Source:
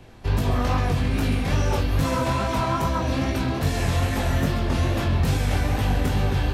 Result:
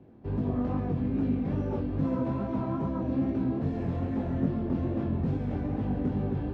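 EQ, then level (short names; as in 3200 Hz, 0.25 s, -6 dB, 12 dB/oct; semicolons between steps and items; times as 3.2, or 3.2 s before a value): band-pass 250 Hz, Q 1.3; air absorption 58 m; 0.0 dB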